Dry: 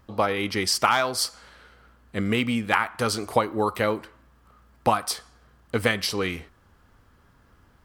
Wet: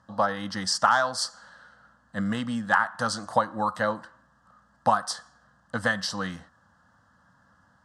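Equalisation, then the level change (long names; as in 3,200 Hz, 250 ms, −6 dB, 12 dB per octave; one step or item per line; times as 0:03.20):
loudspeaker in its box 140–8,200 Hz, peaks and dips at 190 Hz +5 dB, 530 Hz +5 dB, 1,700 Hz +10 dB
phaser with its sweep stopped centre 970 Hz, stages 4
0.0 dB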